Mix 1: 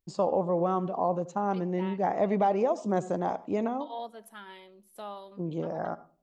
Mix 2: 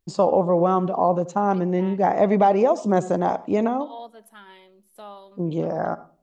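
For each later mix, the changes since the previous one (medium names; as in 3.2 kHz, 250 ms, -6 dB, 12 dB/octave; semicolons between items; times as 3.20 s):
first voice +8.0 dB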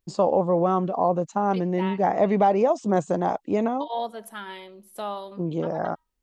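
first voice: send off; second voice +9.0 dB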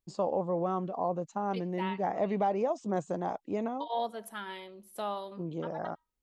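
first voice -9.5 dB; second voice -3.5 dB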